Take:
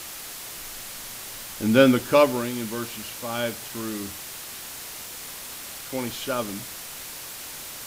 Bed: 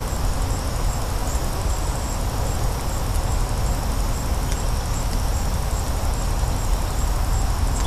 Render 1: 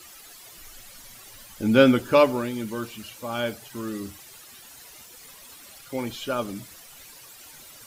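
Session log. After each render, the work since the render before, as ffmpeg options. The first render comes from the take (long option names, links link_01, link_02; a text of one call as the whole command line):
ffmpeg -i in.wav -af "afftdn=noise_reduction=13:noise_floor=-38" out.wav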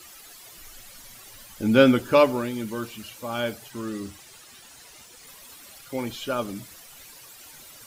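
ffmpeg -i in.wav -filter_complex "[0:a]asettb=1/sr,asplit=3[link_01][link_02][link_03];[link_01]atrim=end=3.704[link_04];[link_02]atrim=start=3.7:end=5.27,asetpts=PTS-STARTPTS,afade=type=in:duration=0.004:curve=qsin,afade=type=out:start_time=1.566:duration=0.004:curve=qsin,equalizer=frequency=13000:width=2.2:gain=-10[link_05];[link_03]atrim=start=5.266[link_06];[link_04][link_05]acrossfade=duration=0.004:curve1=hsin:curve2=qsin[link_07];[link_07][link_06]acrossfade=duration=0.004:curve1=qsin:curve2=hsin" out.wav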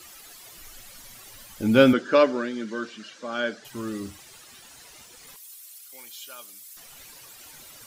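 ffmpeg -i in.wav -filter_complex "[0:a]asettb=1/sr,asplit=3[link_01][link_02][link_03];[link_01]atrim=end=1.934[link_04];[link_02]atrim=start=1.93:end=3.65,asetpts=PTS-STARTPTS,afade=type=in:duration=0.004:curve=qsin,afade=type=out:start_time=1.716:duration=0.004:curve=qsin,highpass=frequency=200:width=0.5412,highpass=frequency=200:width=1.3066,equalizer=frequency=880:width_type=q:width=4:gain=-8,equalizer=frequency=1600:width_type=q:width=4:gain=8,equalizer=frequency=2500:width_type=q:width=4:gain=-5,lowpass=frequency=6400:width=0.5412,lowpass=frequency=6400:width=1.3066[link_05];[link_03]atrim=start=3.646[link_06];[link_04][link_05]acrossfade=duration=0.004:curve1=hsin:curve2=qsin[link_07];[link_07][link_06]acrossfade=duration=0.004:curve1=qsin:curve2=hsin,asettb=1/sr,asplit=3[link_08][link_09][link_10];[link_08]atrim=end=5.364[link_11];[link_09]atrim=start=5.36:end=6.77,asetpts=PTS-STARTPTS,afade=type=in:duration=0.004:curve=qsin,afade=type=out:start_time=1.406:duration=0.004:curve=qsin,aderivative[link_12];[link_10]atrim=start=6.766[link_13];[link_11][link_12]acrossfade=duration=0.004:curve1=hsin:curve2=qsin[link_14];[link_14][link_13]acrossfade=duration=0.004:curve1=qsin:curve2=hsin" out.wav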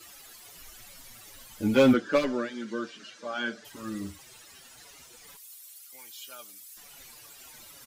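ffmpeg -i in.wav -filter_complex "[0:a]asoftclip=type=hard:threshold=-13.5dB,asplit=2[link_01][link_02];[link_02]adelay=6.3,afreqshift=-2.5[link_03];[link_01][link_03]amix=inputs=2:normalize=1" out.wav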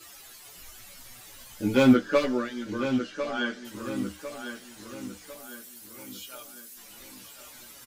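ffmpeg -i in.wav -filter_complex "[0:a]asplit=2[link_01][link_02];[link_02]adelay=16,volume=-5dB[link_03];[link_01][link_03]amix=inputs=2:normalize=0,asplit=2[link_04][link_05];[link_05]adelay=1051,lowpass=frequency=4900:poles=1,volume=-9dB,asplit=2[link_06][link_07];[link_07]adelay=1051,lowpass=frequency=4900:poles=1,volume=0.44,asplit=2[link_08][link_09];[link_09]adelay=1051,lowpass=frequency=4900:poles=1,volume=0.44,asplit=2[link_10][link_11];[link_11]adelay=1051,lowpass=frequency=4900:poles=1,volume=0.44,asplit=2[link_12][link_13];[link_13]adelay=1051,lowpass=frequency=4900:poles=1,volume=0.44[link_14];[link_04][link_06][link_08][link_10][link_12][link_14]amix=inputs=6:normalize=0" out.wav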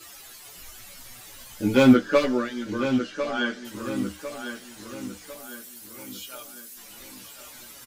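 ffmpeg -i in.wav -af "volume=3dB" out.wav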